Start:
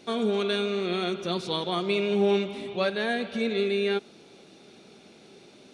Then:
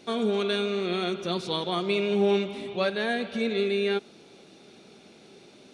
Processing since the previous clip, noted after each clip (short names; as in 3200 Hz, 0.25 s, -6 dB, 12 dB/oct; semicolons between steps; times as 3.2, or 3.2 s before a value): nothing audible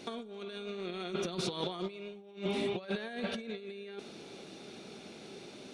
negative-ratio compressor -33 dBFS, ratio -0.5; gain -4 dB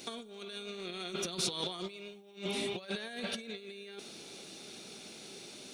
pre-emphasis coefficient 0.8; gain +10 dB